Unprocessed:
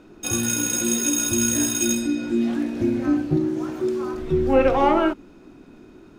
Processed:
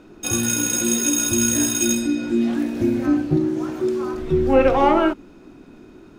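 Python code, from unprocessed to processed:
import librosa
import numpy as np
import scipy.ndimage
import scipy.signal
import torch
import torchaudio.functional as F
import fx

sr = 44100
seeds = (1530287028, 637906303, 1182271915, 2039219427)

y = fx.high_shelf(x, sr, hz=12000.0, db=11.0, at=(2.57, 3.07))
y = F.gain(torch.from_numpy(y), 2.0).numpy()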